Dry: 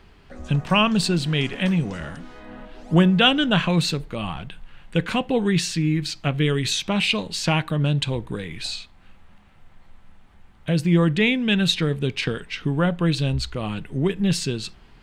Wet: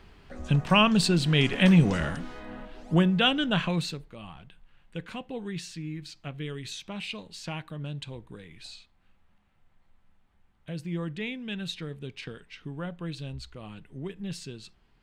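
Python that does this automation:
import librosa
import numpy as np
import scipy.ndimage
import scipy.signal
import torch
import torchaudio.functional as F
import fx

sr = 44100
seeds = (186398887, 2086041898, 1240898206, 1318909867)

y = fx.gain(x, sr, db=fx.line((1.15, -2.0), (1.93, 4.5), (3.06, -6.5), (3.68, -6.5), (4.13, -15.0)))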